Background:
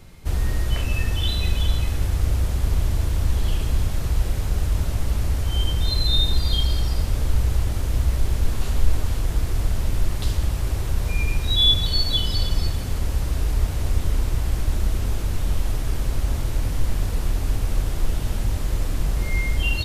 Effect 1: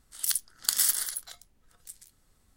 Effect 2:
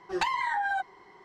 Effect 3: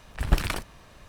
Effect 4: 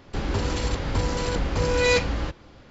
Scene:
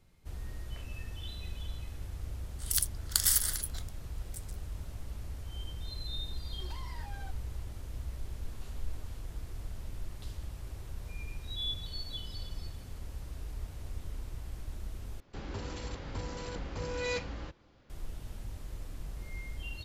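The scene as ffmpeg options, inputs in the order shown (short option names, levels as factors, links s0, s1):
-filter_complex "[0:a]volume=0.112[s0];[2:a]asoftclip=type=tanh:threshold=0.0266[s1];[s0]asplit=2[s2][s3];[s2]atrim=end=15.204[s4];[4:a]atrim=end=2.7,asetpts=PTS-STARTPTS,volume=0.2[s5];[s3]atrim=start=17.896[s6];[1:a]atrim=end=2.56,asetpts=PTS-STARTPTS,volume=0.794,afade=t=in:d=0.004:c=hsin,afade=t=out:st=2.556:d=0.004:c=hsin,adelay=2470[s7];[s1]atrim=end=1.24,asetpts=PTS-STARTPTS,volume=0.158,afade=t=in:d=0.004:c=hsin,afade=t=out:st=1.236:d=0.004:c=hsin,adelay=6490[s8];[s4][s5]acrossfade=d=0.004:c1=hsin:c2=hsin[s9];[s9][s6]acrossfade=d=0.004:c1=hsin:c2=hsin[s10];[s10][s7][s8]amix=inputs=3:normalize=0"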